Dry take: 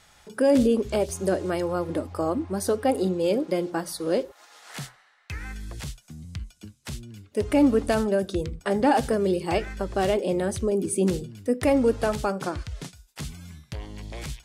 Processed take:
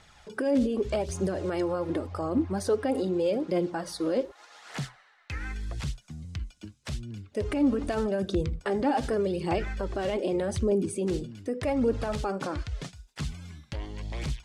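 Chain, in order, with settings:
brickwall limiter −20 dBFS, peak gain reduction 10 dB
high-frequency loss of the air 58 metres
phase shifter 0.84 Hz, delay 3.9 ms, feedback 37%

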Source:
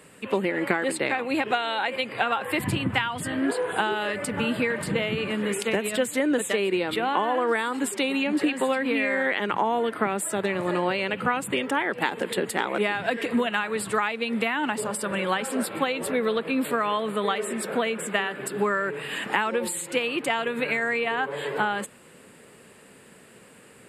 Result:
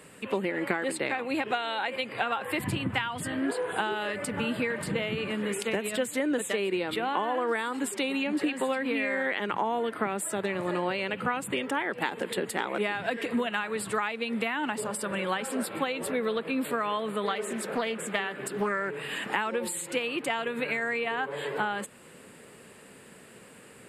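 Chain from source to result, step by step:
in parallel at 0 dB: downward compressor, threshold −36 dBFS, peak gain reduction 16.5 dB
0:17.26–0:18.92: on the sum: highs frequency-modulated by the lows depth 0.24 ms
level −6 dB

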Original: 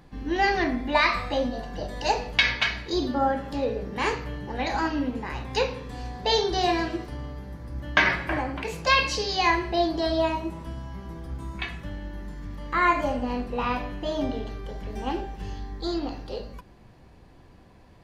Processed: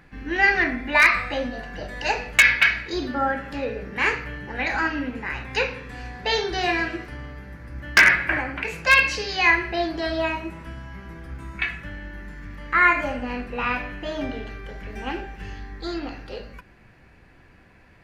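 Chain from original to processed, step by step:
flat-topped bell 1,900 Hz +10.5 dB 1.2 octaves
wave folding −4 dBFS
level −1.5 dB

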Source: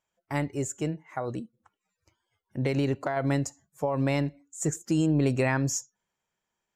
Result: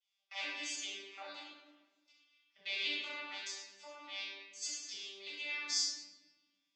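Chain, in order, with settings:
vocoder with an arpeggio as carrier bare fifth, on G3, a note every 405 ms
0:03.02–0:05.66: downward compressor 5 to 1, threshold −33 dBFS, peak gain reduction 12 dB
flat-topped band-pass 3,900 Hz, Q 1.5
rectangular room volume 800 cubic metres, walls mixed, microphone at 6.7 metres
level +8.5 dB

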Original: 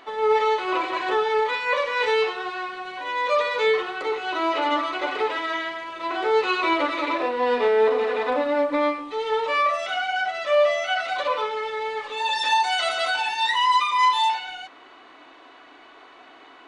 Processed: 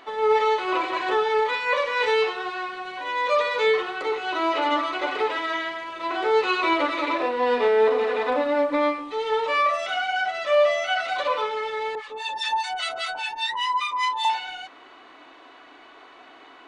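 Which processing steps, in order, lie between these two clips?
0:11.95–0:14.25: two-band tremolo in antiphase 5 Hz, depth 100%, crossover 1,100 Hz

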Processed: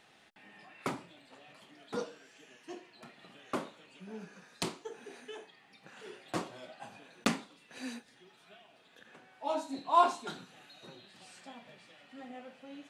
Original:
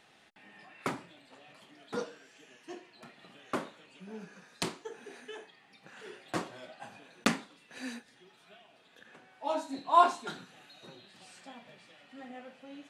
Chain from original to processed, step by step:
dynamic equaliser 1,700 Hz, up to −4 dB, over −57 dBFS, Q 2.7
in parallel at −9 dB: soft clipping −27 dBFS, distortion −5 dB
on the sum: level −3 dB

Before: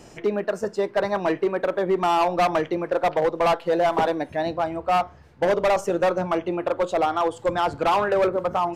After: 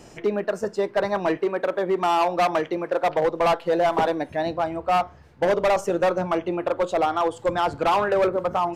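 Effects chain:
0:01.37–0:03.10: low-shelf EQ 120 Hz −11 dB

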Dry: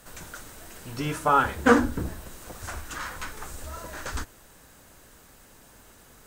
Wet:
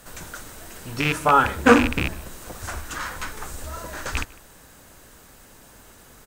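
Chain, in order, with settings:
loose part that buzzes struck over −30 dBFS, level −15 dBFS
slap from a distant wall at 26 metres, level −23 dB
level +4 dB

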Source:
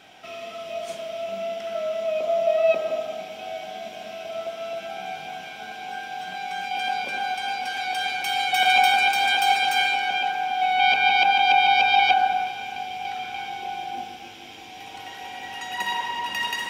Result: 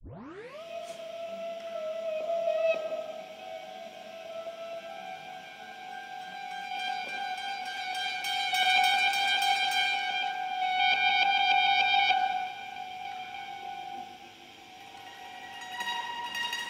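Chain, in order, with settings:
turntable start at the beginning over 0.63 s
dynamic equaliser 4,600 Hz, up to +5 dB, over −34 dBFS, Q 0.72
level −8 dB

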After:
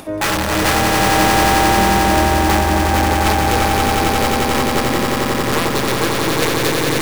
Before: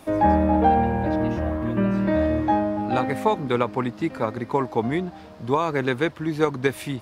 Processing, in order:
wrap-around overflow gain 12.5 dB
upward compression, threshold −28 dBFS
echo that builds up and dies away 89 ms, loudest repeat 8, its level −4 dB

